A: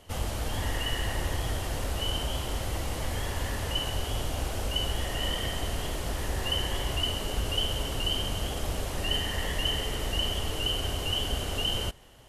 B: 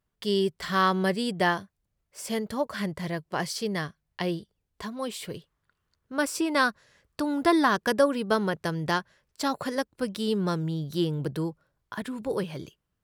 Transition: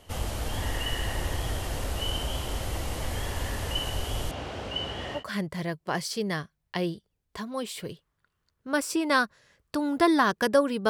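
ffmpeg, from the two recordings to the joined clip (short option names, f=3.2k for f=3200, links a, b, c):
-filter_complex "[0:a]asettb=1/sr,asplit=3[a][b][c];[a]atrim=end=4.314[d];[b]atrim=start=4.31:end=5.24,asetpts=PTS-STARTPTS,afade=t=in:d=0.004:c=qsin,afade=t=out:st=0.926:d=0.004:c=qsin,highpass=110,lowpass=3.8k[e];[c]atrim=start=5.236[f];[d][e]acrossfade=d=0.004:c1=hsin:c2=qsin[g];[g][f]acrossfade=d=0.004:c1=qsin:c2=hsin,apad=whole_dur=10.89,atrim=end=10.89,atrim=end=5.24,asetpts=PTS-STARTPTS[h];[1:a]atrim=start=2.57:end=8.34,asetpts=PTS-STARTPTS[i];[h][i]acrossfade=d=0.12:c1=tri:c2=tri"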